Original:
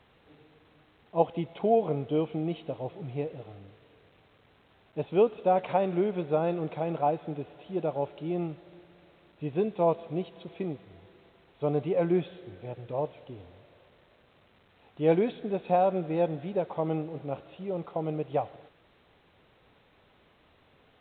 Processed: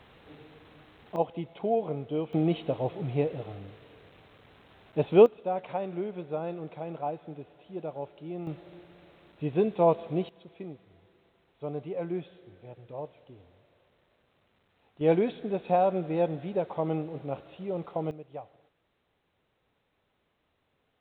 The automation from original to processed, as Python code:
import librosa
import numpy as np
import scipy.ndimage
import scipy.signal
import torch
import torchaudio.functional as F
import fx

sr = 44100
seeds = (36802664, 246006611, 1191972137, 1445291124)

y = fx.gain(x, sr, db=fx.steps((0.0, 6.5), (1.16, -3.5), (2.33, 5.5), (5.26, -6.5), (8.47, 2.5), (10.29, -7.5), (15.01, 0.0), (18.11, -12.5)))